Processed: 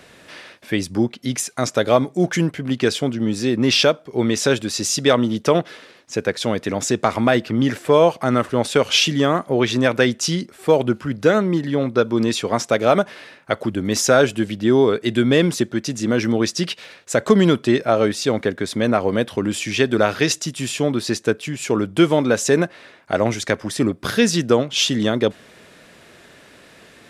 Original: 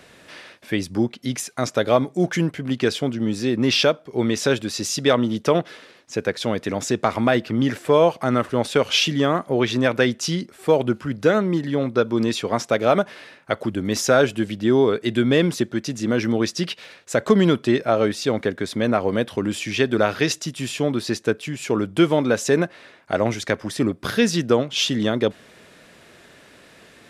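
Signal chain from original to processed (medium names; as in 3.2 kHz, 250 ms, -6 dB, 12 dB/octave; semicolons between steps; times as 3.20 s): dynamic bell 7.9 kHz, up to +4 dB, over -42 dBFS, Q 1.1; trim +2 dB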